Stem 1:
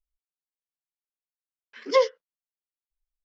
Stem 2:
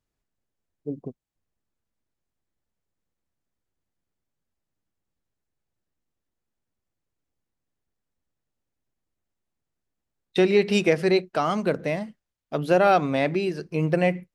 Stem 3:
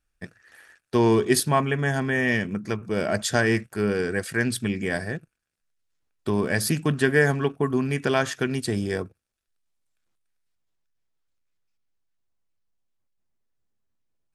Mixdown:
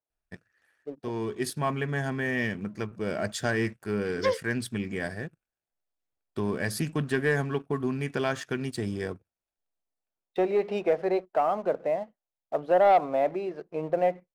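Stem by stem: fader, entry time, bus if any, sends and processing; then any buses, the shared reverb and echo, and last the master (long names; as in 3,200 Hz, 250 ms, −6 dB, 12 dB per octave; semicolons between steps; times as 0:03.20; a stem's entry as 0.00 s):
−10.0 dB, 2.30 s, no send, no processing
−0.5 dB, 0.00 s, no send, resonant band-pass 700 Hz, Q 2.1
−9.0 dB, 0.10 s, no send, high-shelf EQ 4,700 Hz −4.5 dB; automatic ducking −9 dB, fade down 0.55 s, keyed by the second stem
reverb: not used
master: leveller curve on the samples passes 1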